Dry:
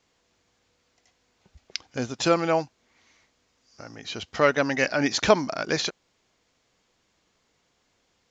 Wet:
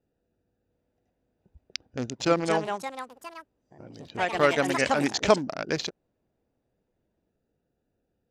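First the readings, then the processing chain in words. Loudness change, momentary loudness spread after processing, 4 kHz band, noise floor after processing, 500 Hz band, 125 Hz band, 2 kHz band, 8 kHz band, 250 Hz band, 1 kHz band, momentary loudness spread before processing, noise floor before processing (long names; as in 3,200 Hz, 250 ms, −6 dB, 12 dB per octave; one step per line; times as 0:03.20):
−1.5 dB, 17 LU, −3.0 dB, −78 dBFS, −1.5 dB, −1.0 dB, −2.0 dB, can't be measured, −1.5 dB, 0.0 dB, 15 LU, −71 dBFS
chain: adaptive Wiener filter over 41 samples
delay with pitch and tempo change per echo 704 ms, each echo +4 semitones, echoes 3, each echo −6 dB
level −1.5 dB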